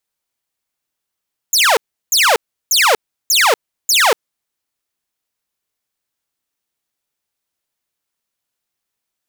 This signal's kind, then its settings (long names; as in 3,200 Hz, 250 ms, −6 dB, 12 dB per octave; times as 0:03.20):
repeated falling chirps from 7,400 Hz, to 400 Hz, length 0.24 s saw, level −6.5 dB, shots 5, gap 0.35 s